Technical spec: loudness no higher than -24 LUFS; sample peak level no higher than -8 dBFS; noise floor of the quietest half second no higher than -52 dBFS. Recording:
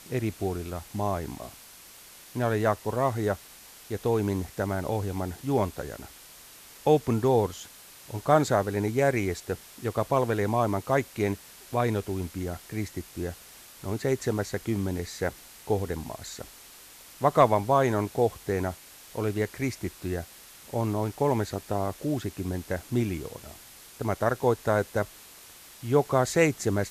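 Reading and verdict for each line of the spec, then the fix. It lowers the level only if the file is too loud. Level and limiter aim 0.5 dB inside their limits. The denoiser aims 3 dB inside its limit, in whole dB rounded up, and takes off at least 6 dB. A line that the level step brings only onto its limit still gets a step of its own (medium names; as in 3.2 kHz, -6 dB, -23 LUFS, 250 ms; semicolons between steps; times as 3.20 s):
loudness -28.0 LUFS: pass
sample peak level -7.5 dBFS: fail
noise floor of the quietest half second -50 dBFS: fail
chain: noise reduction 6 dB, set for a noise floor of -50 dBFS; peak limiter -8.5 dBFS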